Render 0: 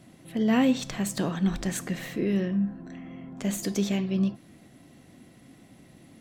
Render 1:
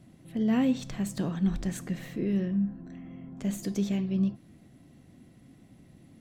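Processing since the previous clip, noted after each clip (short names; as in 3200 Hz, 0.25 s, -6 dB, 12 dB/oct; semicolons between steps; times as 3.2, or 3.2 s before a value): low shelf 260 Hz +10.5 dB; gain -8 dB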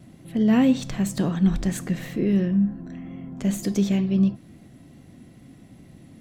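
wow and flutter 26 cents; gain +7 dB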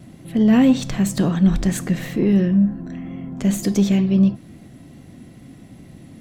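soft clip -10.5 dBFS, distortion -24 dB; gain +5.5 dB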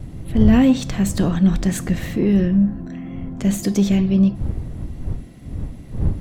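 wind noise 100 Hz -26 dBFS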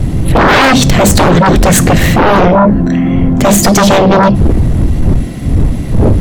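sine folder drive 19 dB, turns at -1.5 dBFS; gain -1.5 dB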